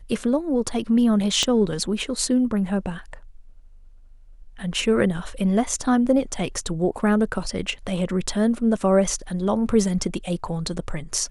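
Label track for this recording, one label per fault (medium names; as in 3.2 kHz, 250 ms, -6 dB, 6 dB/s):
1.430000	1.430000	pop -9 dBFS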